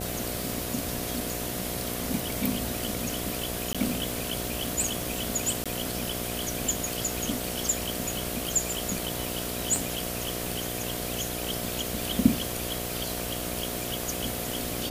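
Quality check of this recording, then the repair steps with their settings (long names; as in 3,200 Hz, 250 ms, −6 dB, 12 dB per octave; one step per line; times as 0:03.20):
mains buzz 60 Hz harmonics 12 −36 dBFS
surface crackle 33 per second −38 dBFS
0:03.73–0:03.75: drop-out 16 ms
0:05.64–0:05.66: drop-out 16 ms
0:09.76: click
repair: click removal
hum removal 60 Hz, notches 12
repair the gap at 0:03.73, 16 ms
repair the gap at 0:05.64, 16 ms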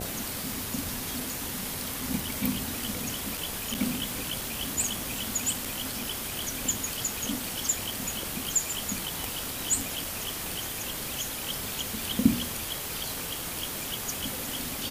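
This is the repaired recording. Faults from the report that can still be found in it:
0:09.76: click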